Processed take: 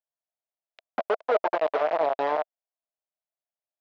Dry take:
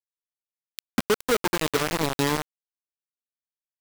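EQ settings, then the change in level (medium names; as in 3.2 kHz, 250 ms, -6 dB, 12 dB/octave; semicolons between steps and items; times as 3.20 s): resonant high-pass 650 Hz, resonance Q 6.4; distance through air 160 m; tape spacing loss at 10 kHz 32 dB; 0.0 dB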